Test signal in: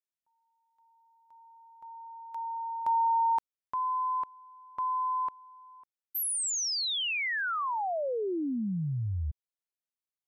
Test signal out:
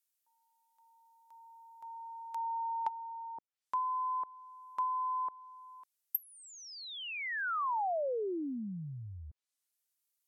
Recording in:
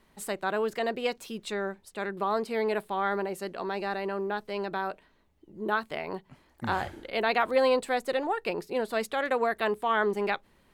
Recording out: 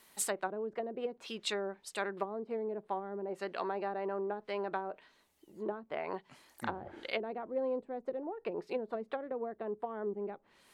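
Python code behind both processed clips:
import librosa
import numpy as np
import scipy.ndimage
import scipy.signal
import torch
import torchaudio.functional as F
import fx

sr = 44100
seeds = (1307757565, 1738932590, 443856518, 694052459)

y = fx.env_lowpass_down(x, sr, base_hz=340.0, full_db=-25.5)
y = fx.riaa(y, sr, side='recording')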